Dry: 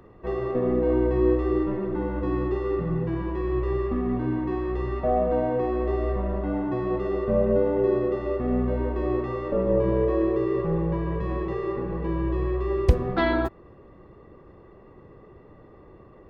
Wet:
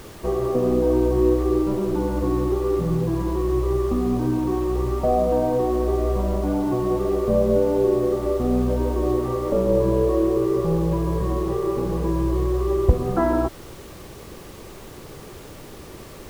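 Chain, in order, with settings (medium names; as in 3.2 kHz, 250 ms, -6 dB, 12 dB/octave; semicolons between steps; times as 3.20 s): low-pass 1.3 kHz 24 dB/octave; in parallel at +3 dB: compression, threshold -30 dBFS, peak gain reduction 17 dB; on the sum: added noise pink -44 dBFS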